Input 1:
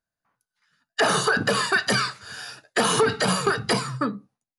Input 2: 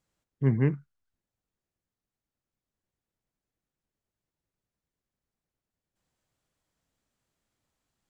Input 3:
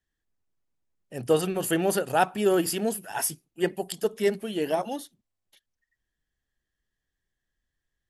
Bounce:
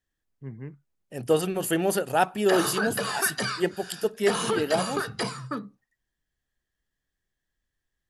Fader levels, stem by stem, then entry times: −7.0, −15.0, 0.0 decibels; 1.50, 0.00, 0.00 seconds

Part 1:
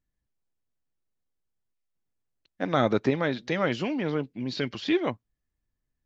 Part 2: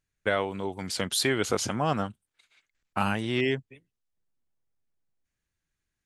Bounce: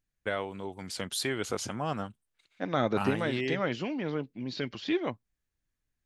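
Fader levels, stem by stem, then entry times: −4.5, −6.0 decibels; 0.00, 0.00 seconds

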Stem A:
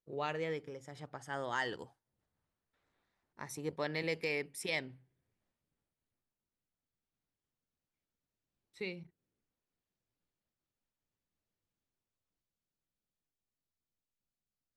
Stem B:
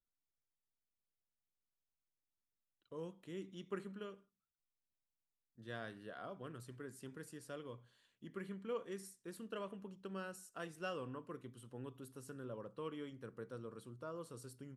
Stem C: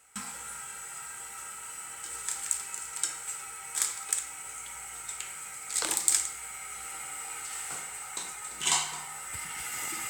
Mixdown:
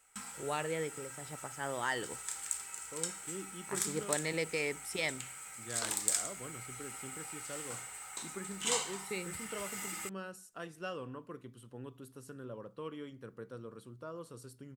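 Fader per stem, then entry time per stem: +1.0, +2.0, −6.5 decibels; 0.30, 0.00, 0.00 seconds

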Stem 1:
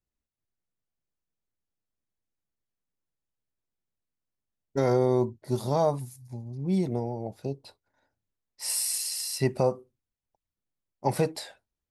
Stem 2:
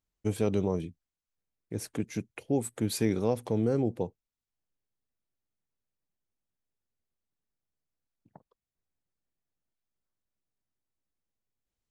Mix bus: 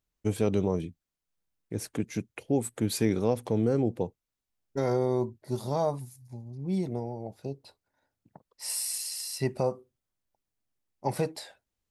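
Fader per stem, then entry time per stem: −3.5, +1.5 decibels; 0.00, 0.00 seconds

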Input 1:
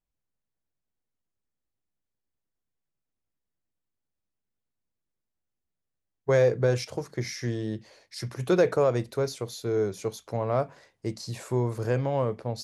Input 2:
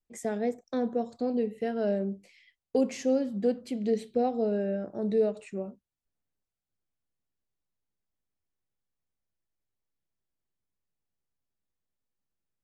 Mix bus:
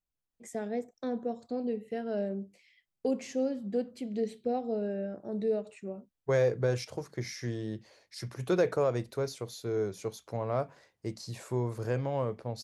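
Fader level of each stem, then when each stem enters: −5.0, −4.5 decibels; 0.00, 0.30 seconds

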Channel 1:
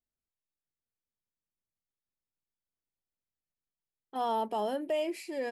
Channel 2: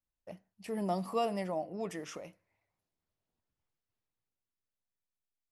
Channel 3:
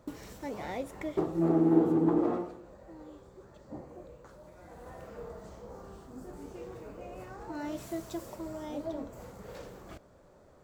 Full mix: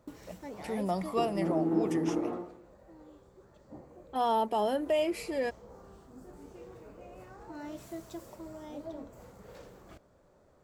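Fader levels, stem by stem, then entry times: +3.0, +1.5, −5.0 decibels; 0.00, 0.00, 0.00 seconds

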